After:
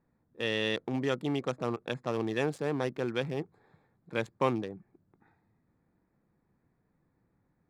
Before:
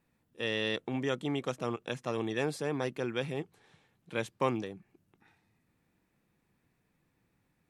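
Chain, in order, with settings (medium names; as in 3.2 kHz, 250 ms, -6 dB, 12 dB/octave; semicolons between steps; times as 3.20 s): local Wiener filter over 15 samples; trim +2 dB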